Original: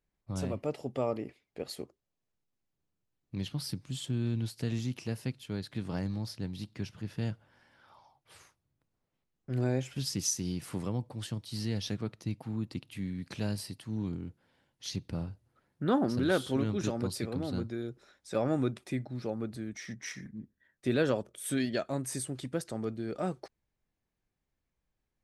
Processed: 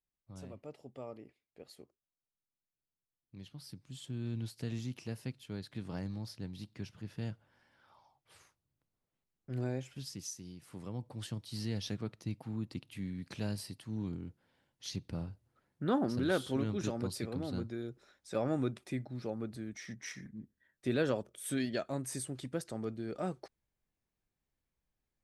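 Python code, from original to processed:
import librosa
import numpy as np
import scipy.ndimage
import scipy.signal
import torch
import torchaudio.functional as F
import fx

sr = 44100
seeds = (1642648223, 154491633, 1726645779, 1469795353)

y = fx.gain(x, sr, db=fx.line((3.54, -14.0), (4.38, -5.5), (9.59, -5.5), (10.58, -15.0), (11.14, -3.5)))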